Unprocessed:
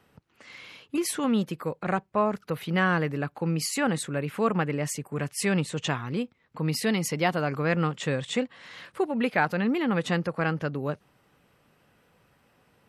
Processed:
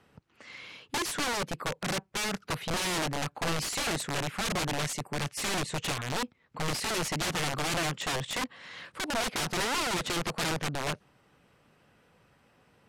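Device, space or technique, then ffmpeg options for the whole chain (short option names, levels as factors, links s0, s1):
overflowing digital effects unit: -af "aeval=exprs='(mod(17.8*val(0)+1,2)-1)/17.8':c=same,lowpass=9900"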